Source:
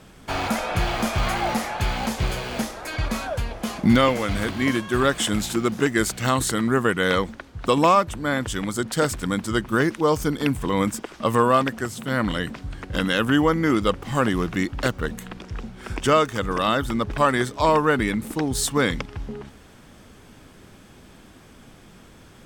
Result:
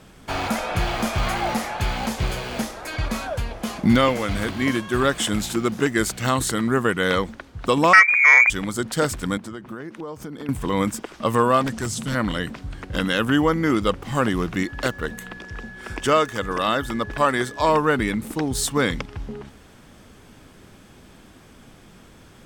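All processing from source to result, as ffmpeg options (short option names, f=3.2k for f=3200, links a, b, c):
-filter_complex "[0:a]asettb=1/sr,asplit=3[a][b][c];[a]atrim=end=7.934[d];[b]atrim=start=7.93:end=8.5,asetpts=PTS-STARTPTS,afade=t=in:d=0.004:c=qsin,afade=t=out:st=0.566:d=0.004:c=qsin,tiltshelf=f=1.1k:g=8.5,lowpass=f=2.1k:t=q:w=0.5098,lowpass=f=2.1k:t=q:w=0.6013,lowpass=f=2.1k:t=q:w=0.9,lowpass=f=2.1k:t=q:w=2.563,afreqshift=-2500,acontrast=76[e];[c]atrim=start=8.496[f];[d][e]acrossfade=d=0.004:c1=hsin:c2=qsin[g];[g][f]acrossfade=d=0.004:c1=qsin:c2=hsin,asettb=1/sr,asplit=3[h][i][j];[h]atrim=end=9.374[k];[i]atrim=start=9.37:end=10.49,asetpts=PTS-STARTPTS,afade=t=in:d=0.004:c=qsin,afade=t=out:st=1.116:d=0.004:c=qsin,highpass=120,highshelf=f=2.7k:g=-10,acompressor=threshold=-30dB:ratio=8:attack=3.2:release=140:knee=1:detection=peak[l];[j]atrim=start=10.486[m];[k][l]acrossfade=d=0.004:c1=hsin:c2=qsin[n];[n][m]acrossfade=d=0.004:c1=qsin:c2=hsin,asettb=1/sr,asplit=3[o][p][q];[o]atrim=end=11.644[r];[p]atrim=start=11.64:end=12.15,asetpts=PTS-STARTPTS,afade=t=in:d=0.004:c=qsin,afade=t=out:st=0.506:d=0.004:c=qsin,lowpass=7.4k,bass=f=250:g=7,treble=f=4k:g=13,asoftclip=type=hard:threshold=-21dB[s];[q]atrim=start=12.146[t];[r][s]acrossfade=d=0.004:c1=hsin:c2=qsin[u];[u][t]acrossfade=d=0.004:c1=qsin:c2=hsin,asettb=1/sr,asplit=3[v][w][x];[v]atrim=end=14.634[y];[w]atrim=start=14.63:end=17.7,asetpts=PTS-STARTPTS,afade=t=in:d=0.004:c=qsin,afade=t=out:st=3.066:d=0.004:c=qsin,bass=f=250:g=-4,treble=f=4k:g=0,aeval=exprs='val(0)+0.0112*sin(2*PI*1700*n/s)':c=same[z];[x]atrim=start=17.696[aa];[y][z]acrossfade=d=0.004:c1=hsin:c2=qsin[ab];[ab][aa]acrossfade=d=0.004:c1=qsin:c2=hsin"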